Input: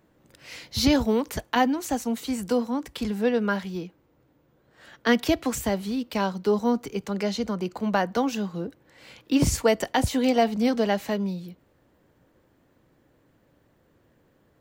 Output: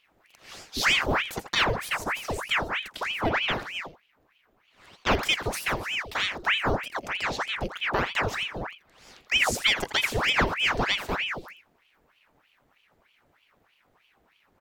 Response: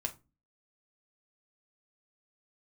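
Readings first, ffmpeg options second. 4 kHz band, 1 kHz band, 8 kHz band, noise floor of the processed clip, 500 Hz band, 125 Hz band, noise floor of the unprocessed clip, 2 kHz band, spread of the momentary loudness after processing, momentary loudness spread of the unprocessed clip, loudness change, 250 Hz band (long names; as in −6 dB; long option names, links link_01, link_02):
+7.0 dB, −0.5 dB, −2.0 dB, −67 dBFS, −7.0 dB, −3.0 dB, −64 dBFS, +8.0 dB, 9 LU, 10 LU, −0.5 dB, −13.0 dB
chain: -af "aecho=1:1:83:0.266,aeval=exprs='val(0)*sin(2*PI*1500*n/s+1500*0.9/3.2*sin(2*PI*3.2*n/s))':channel_layout=same"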